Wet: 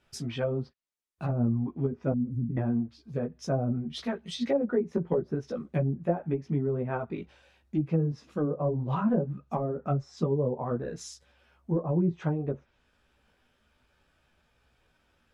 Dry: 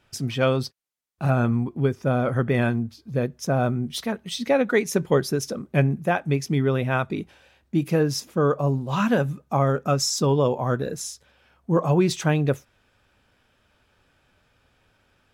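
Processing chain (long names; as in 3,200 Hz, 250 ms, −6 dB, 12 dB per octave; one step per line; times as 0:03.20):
0:02.12–0:02.57: elliptic band-stop filter 260–7,500 Hz, stop band 40 dB
treble cut that deepens with the level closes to 450 Hz, closed at −16.5 dBFS
multi-voice chorus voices 6, 0.94 Hz, delay 15 ms, depth 3 ms
level −2.5 dB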